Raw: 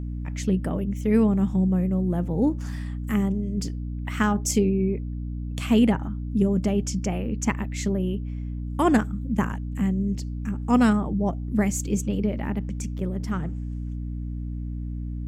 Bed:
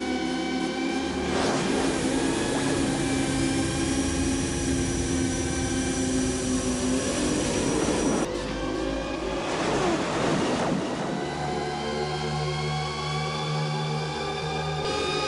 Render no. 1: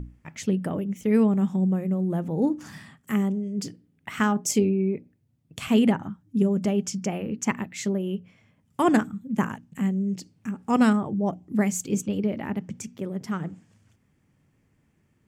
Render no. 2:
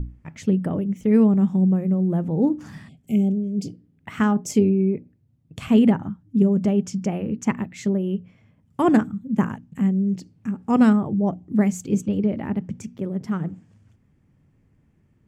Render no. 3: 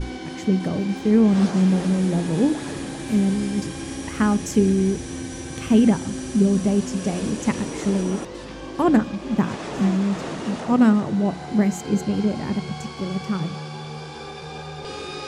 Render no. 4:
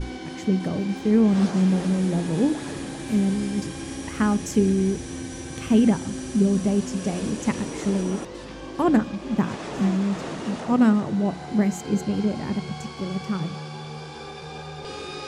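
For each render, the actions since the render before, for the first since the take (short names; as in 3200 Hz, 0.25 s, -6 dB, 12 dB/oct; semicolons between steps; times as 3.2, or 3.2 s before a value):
notches 60/120/180/240/300 Hz
2.91–3.77 spectral repair 790–2100 Hz after; tilt -2 dB/oct
add bed -6 dB
gain -2 dB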